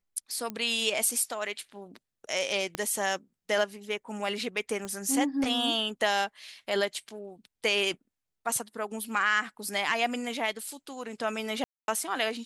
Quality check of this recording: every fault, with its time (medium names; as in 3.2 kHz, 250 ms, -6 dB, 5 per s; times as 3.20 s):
0.50 s: pop -20 dBFS
2.75 s: pop -16 dBFS
4.85 s: pop -23 dBFS
11.64–11.88 s: dropout 241 ms